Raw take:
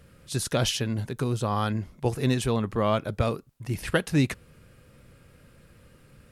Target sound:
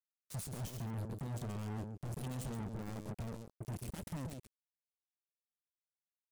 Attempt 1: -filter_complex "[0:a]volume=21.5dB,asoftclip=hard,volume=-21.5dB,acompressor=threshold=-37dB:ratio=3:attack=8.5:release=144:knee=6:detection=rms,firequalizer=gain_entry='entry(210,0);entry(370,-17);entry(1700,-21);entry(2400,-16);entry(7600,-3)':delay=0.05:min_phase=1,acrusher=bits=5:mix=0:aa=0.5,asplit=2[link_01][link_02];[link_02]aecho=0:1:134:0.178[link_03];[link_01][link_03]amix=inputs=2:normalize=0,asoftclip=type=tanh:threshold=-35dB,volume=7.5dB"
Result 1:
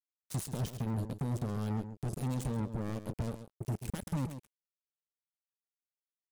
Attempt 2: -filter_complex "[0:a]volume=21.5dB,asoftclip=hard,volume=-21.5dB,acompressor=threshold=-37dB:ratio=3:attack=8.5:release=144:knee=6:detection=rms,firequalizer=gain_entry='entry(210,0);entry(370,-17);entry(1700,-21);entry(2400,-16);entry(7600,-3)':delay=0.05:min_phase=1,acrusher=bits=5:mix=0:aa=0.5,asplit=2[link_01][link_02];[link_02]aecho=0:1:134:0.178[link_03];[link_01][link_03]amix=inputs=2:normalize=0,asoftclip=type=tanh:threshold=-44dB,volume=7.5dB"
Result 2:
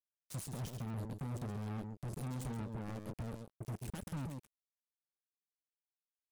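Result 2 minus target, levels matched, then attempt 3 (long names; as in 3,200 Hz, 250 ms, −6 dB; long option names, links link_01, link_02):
gain into a clipping stage and back: distortion −6 dB
-filter_complex "[0:a]volume=29.5dB,asoftclip=hard,volume=-29.5dB,acompressor=threshold=-37dB:ratio=3:attack=8.5:release=144:knee=6:detection=rms,firequalizer=gain_entry='entry(210,0);entry(370,-17);entry(1700,-21);entry(2400,-16);entry(7600,-3)':delay=0.05:min_phase=1,acrusher=bits=5:mix=0:aa=0.5,asplit=2[link_01][link_02];[link_02]aecho=0:1:134:0.178[link_03];[link_01][link_03]amix=inputs=2:normalize=0,asoftclip=type=tanh:threshold=-44dB,volume=7.5dB"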